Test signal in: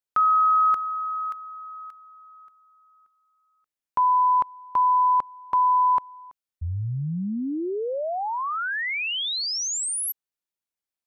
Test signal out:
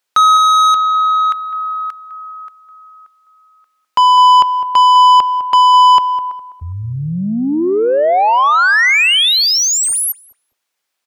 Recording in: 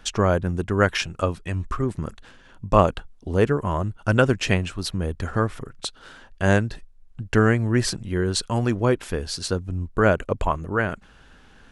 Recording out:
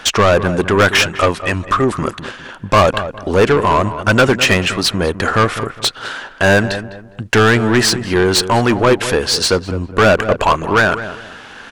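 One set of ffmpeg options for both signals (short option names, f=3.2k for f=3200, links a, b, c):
-filter_complex "[0:a]asplit=2[a][b];[b]highpass=f=720:p=1,volume=27dB,asoftclip=type=tanh:threshold=-2dB[c];[a][c]amix=inputs=2:normalize=0,lowpass=f=5.1k:p=1,volume=-6dB,asplit=2[d][e];[e]adelay=205,lowpass=f=1.5k:p=1,volume=-11dB,asplit=2[f][g];[g]adelay=205,lowpass=f=1.5k:p=1,volume=0.32,asplit=2[h][i];[i]adelay=205,lowpass=f=1.5k:p=1,volume=0.32[j];[f][h][j]amix=inputs=3:normalize=0[k];[d][k]amix=inputs=2:normalize=0"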